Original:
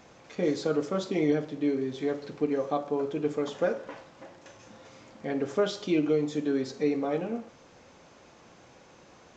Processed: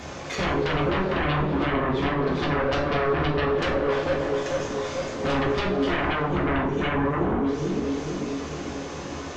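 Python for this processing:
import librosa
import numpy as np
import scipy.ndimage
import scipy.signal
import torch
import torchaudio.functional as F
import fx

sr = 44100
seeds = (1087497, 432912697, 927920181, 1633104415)

p1 = fx.diode_clip(x, sr, knee_db=-29.0)
p2 = fx.spec_erase(p1, sr, start_s=6.15, length_s=1.3, low_hz=470.0, high_hz=5600.0)
p3 = p2 + fx.echo_feedback(p2, sr, ms=445, feedback_pct=56, wet_db=-11, dry=0)
p4 = fx.env_lowpass_down(p3, sr, base_hz=470.0, full_db=-26.0)
p5 = fx.fold_sine(p4, sr, drive_db=19, ceiling_db=-17.0)
p6 = p4 + (p5 * 10.0 ** (-5.0 / 20.0))
p7 = fx.peak_eq(p6, sr, hz=74.0, db=13.5, octaves=0.24)
p8 = fx.rev_double_slope(p7, sr, seeds[0], early_s=0.39, late_s=4.7, knee_db=-21, drr_db=-1.5)
y = p8 * 10.0 ** (-4.5 / 20.0)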